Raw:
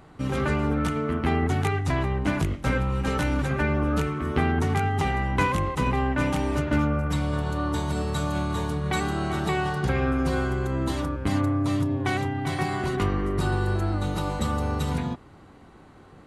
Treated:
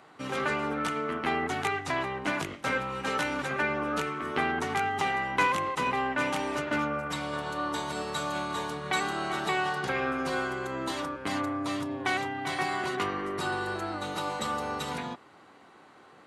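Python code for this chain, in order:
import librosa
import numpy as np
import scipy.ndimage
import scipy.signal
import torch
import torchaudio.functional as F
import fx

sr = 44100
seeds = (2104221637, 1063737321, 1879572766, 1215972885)

y = fx.weighting(x, sr, curve='A')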